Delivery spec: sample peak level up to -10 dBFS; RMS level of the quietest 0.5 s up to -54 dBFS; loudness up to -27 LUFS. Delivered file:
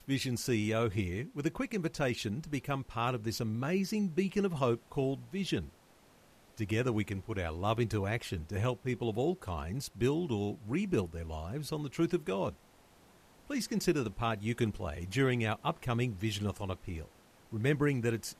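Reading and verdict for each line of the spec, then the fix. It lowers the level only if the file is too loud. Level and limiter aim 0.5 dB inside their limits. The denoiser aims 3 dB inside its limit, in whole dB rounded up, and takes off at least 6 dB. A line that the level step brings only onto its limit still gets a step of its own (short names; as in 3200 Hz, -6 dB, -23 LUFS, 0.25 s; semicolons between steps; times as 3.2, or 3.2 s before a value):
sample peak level -17.0 dBFS: OK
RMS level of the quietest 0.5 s -62 dBFS: OK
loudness -34.0 LUFS: OK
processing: none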